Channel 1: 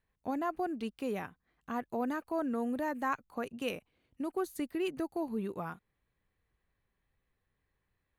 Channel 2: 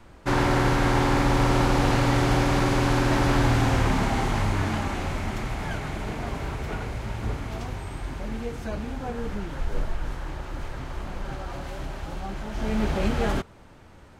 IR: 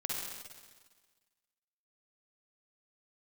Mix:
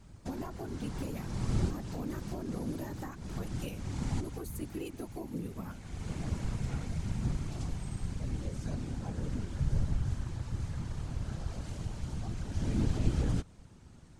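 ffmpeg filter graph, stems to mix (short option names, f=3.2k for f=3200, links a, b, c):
-filter_complex "[0:a]volume=-3dB,asplit=2[a][b];[1:a]lowpass=f=10k:w=0.5412,lowpass=f=10k:w=1.3066,volume=-7.5dB[c];[b]apad=whole_len=625838[d];[c][d]sidechaincompress=threshold=-52dB:ratio=6:attack=47:release=477[e];[a][e]amix=inputs=2:normalize=0,bass=f=250:g=12,treble=f=4k:g=14,acrossover=split=410[f][g];[g]acompressor=threshold=-37dB:ratio=10[h];[f][h]amix=inputs=2:normalize=0,afftfilt=real='hypot(re,im)*cos(2*PI*random(0))':imag='hypot(re,im)*sin(2*PI*random(1))':win_size=512:overlap=0.75"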